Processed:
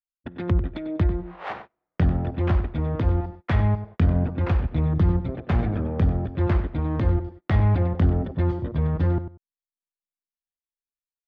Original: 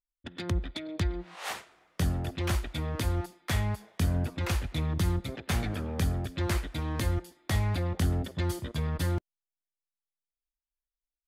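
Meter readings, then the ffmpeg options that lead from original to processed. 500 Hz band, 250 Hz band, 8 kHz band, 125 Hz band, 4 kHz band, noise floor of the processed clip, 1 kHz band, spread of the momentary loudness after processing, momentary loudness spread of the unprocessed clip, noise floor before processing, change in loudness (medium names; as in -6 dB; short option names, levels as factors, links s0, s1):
+7.5 dB, +8.0 dB, under -20 dB, +8.0 dB, no reading, under -85 dBFS, +5.5 dB, 8 LU, 6 LU, under -85 dBFS, +7.5 dB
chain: -af "adynamicequalizer=threshold=0.00282:dfrequency=2100:dqfactor=0.72:tfrequency=2100:tqfactor=0.72:attack=5:release=100:ratio=0.375:range=2.5:mode=cutabove:tftype=bell,aecho=1:1:96|192:0.282|0.0507,adynamicsmooth=sensitivity=1.5:basefreq=1400,lowpass=3800,agate=range=0.0631:threshold=0.00398:ratio=16:detection=peak,volume=2.51"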